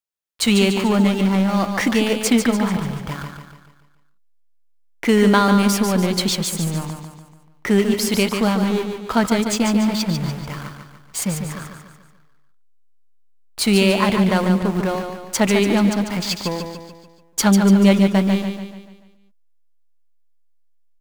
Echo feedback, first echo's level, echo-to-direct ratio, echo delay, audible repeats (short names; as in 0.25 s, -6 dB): 48%, -6.5 dB, -5.5 dB, 0.145 s, 5